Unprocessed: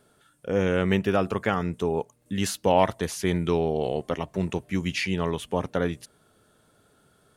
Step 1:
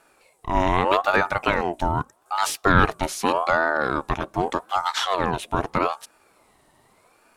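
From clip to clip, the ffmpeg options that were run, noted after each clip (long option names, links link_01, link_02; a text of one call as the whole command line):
ffmpeg -i in.wav -af "aeval=exprs='val(0)*sin(2*PI*770*n/s+770*0.4/0.82*sin(2*PI*0.82*n/s))':channel_layout=same,volume=6dB" out.wav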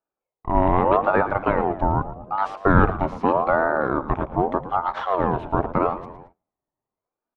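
ffmpeg -i in.wav -filter_complex "[0:a]asplit=2[link_01][link_02];[link_02]asplit=5[link_03][link_04][link_05][link_06][link_07];[link_03]adelay=112,afreqshift=-96,volume=-13dB[link_08];[link_04]adelay=224,afreqshift=-192,volume=-18.5dB[link_09];[link_05]adelay=336,afreqshift=-288,volume=-24dB[link_10];[link_06]adelay=448,afreqshift=-384,volume=-29.5dB[link_11];[link_07]adelay=560,afreqshift=-480,volume=-35.1dB[link_12];[link_08][link_09][link_10][link_11][link_12]amix=inputs=5:normalize=0[link_13];[link_01][link_13]amix=inputs=2:normalize=0,agate=range=-31dB:threshold=-45dB:ratio=16:detection=peak,lowpass=1100,volume=3dB" out.wav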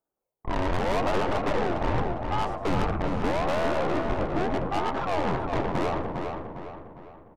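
ffmpeg -i in.wav -filter_complex "[0:a]equalizer=frequency=3100:width=0.52:gain=-12.5,aeval=exprs='(tanh(31.6*val(0)+0.45)-tanh(0.45))/31.6':channel_layout=same,asplit=2[link_01][link_02];[link_02]adelay=405,lowpass=frequency=3700:poles=1,volume=-5dB,asplit=2[link_03][link_04];[link_04]adelay=405,lowpass=frequency=3700:poles=1,volume=0.45,asplit=2[link_05][link_06];[link_06]adelay=405,lowpass=frequency=3700:poles=1,volume=0.45,asplit=2[link_07][link_08];[link_08]adelay=405,lowpass=frequency=3700:poles=1,volume=0.45,asplit=2[link_09][link_10];[link_10]adelay=405,lowpass=frequency=3700:poles=1,volume=0.45,asplit=2[link_11][link_12];[link_12]adelay=405,lowpass=frequency=3700:poles=1,volume=0.45[link_13];[link_03][link_05][link_07][link_09][link_11][link_13]amix=inputs=6:normalize=0[link_14];[link_01][link_14]amix=inputs=2:normalize=0,volume=5.5dB" out.wav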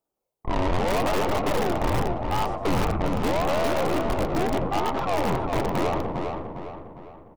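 ffmpeg -i in.wav -filter_complex "[0:a]equalizer=frequency=1600:width=3.3:gain=-5.5,asplit=2[link_01][link_02];[link_02]aeval=exprs='(mod(8.41*val(0)+1,2)-1)/8.41':channel_layout=same,volume=-8dB[link_03];[link_01][link_03]amix=inputs=2:normalize=0" out.wav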